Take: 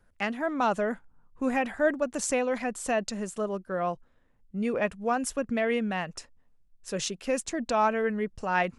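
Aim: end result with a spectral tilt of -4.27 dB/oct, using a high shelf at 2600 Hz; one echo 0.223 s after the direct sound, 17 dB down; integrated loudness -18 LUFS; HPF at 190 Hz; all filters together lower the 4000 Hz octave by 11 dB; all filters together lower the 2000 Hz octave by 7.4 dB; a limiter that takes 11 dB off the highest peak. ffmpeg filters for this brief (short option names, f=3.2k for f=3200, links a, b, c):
-af "highpass=190,equalizer=f=2k:t=o:g=-5.5,highshelf=f=2.6k:g=-6,equalizer=f=4k:t=o:g=-8,alimiter=level_in=2dB:limit=-24dB:level=0:latency=1,volume=-2dB,aecho=1:1:223:0.141,volume=17.5dB"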